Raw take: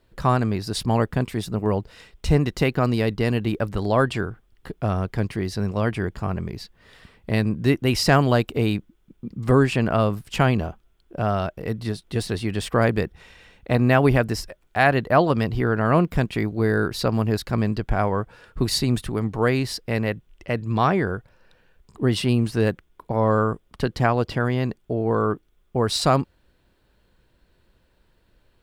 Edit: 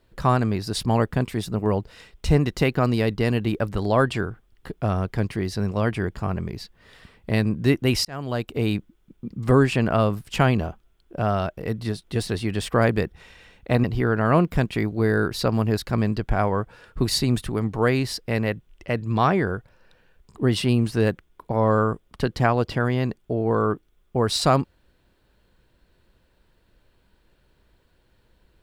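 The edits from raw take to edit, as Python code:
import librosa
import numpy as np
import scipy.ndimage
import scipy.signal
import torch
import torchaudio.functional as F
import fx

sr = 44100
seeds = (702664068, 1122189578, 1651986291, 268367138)

y = fx.edit(x, sr, fx.fade_in_span(start_s=8.05, length_s=0.72),
    fx.cut(start_s=13.84, length_s=1.6), tone=tone)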